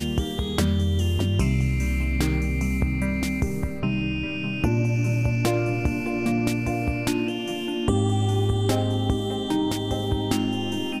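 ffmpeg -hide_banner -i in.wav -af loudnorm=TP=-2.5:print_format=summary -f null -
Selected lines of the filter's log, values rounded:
Input Integrated:    -24.7 LUFS
Input True Peak:      -8.9 dBTP
Input LRA:             0.5 LU
Input Threshold:     -34.7 LUFS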